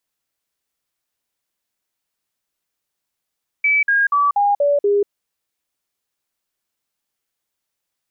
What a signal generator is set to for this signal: stepped sine 2.3 kHz down, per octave 2, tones 6, 0.19 s, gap 0.05 s -12.5 dBFS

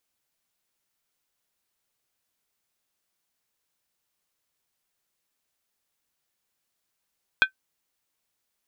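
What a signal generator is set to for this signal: skin hit, lowest mode 1.54 kHz, decay 0.10 s, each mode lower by 5.5 dB, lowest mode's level -10 dB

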